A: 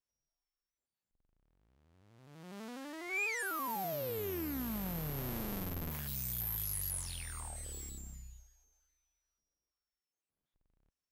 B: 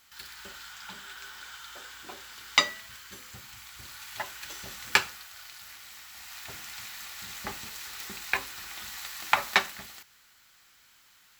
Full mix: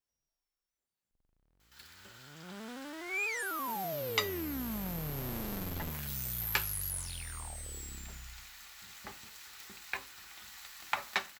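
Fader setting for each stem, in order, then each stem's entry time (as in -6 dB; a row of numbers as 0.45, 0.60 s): +1.0, -10.0 dB; 0.00, 1.60 s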